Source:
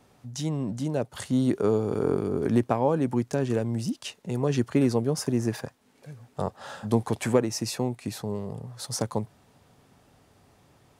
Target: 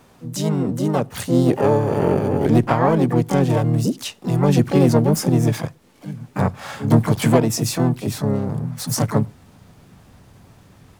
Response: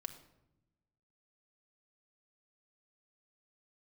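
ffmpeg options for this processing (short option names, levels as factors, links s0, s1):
-filter_complex "[0:a]asubboost=boost=2:cutoff=180,acontrast=84,asplit=3[s0][s1][s2];[s1]asetrate=58866,aresample=44100,atempo=0.749154,volume=0.708[s3];[s2]asetrate=88200,aresample=44100,atempo=0.5,volume=0.398[s4];[s0][s3][s4]amix=inputs=3:normalize=0,asplit=2[s5][s6];[1:a]atrim=start_sample=2205,afade=t=out:st=0.17:d=0.01,atrim=end_sample=7938,lowshelf=f=320:g=9.5[s7];[s6][s7]afir=irnorm=-1:irlink=0,volume=0.188[s8];[s5][s8]amix=inputs=2:normalize=0,volume=0.75"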